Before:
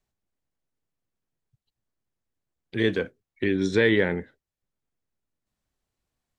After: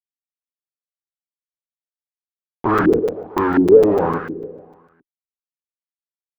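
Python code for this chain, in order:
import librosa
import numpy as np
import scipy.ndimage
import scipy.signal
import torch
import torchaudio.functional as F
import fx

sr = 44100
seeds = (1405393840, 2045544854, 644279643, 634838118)

y = fx.doppler_pass(x, sr, speed_mps=17, closest_m=3.4, pass_at_s=2.21)
y = fx.peak_eq(y, sr, hz=400.0, db=4.5, octaves=2.1)
y = fx.notch(y, sr, hz=1600.0, q=19.0)
y = fx.fuzz(y, sr, gain_db=51.0, gate_db=-48.0)
y = fx.echo_feedback(y, sr, ms=139, feedback_pct=55, wet_db=-11.5)
y = fx.filter_lfo_lowpass(y, sr, shape='saw_up', hz=1.4, low_hz=300.0, high_hz=1600.0, q=4.9)
y = fx.buffer_crackle(y, sr, first_s=0.53, period_s=0.15, block=256, kind='zero')
y = F.gain(torch.from_numpy(y), -4.0).numpy()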